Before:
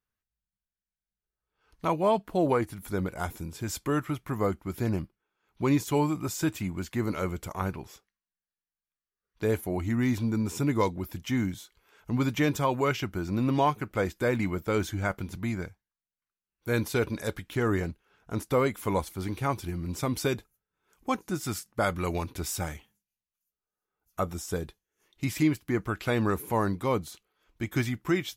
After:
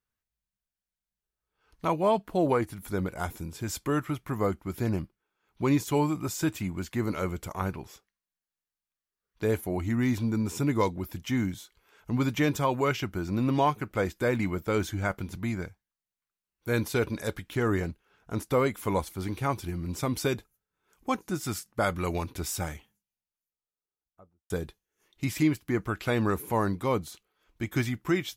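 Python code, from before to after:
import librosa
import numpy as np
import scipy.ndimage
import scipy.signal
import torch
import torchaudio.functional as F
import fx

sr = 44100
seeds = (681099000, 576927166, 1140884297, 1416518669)

y = fx.studio_fade_out(x, sr, start_s=22.62, length_s=1.88)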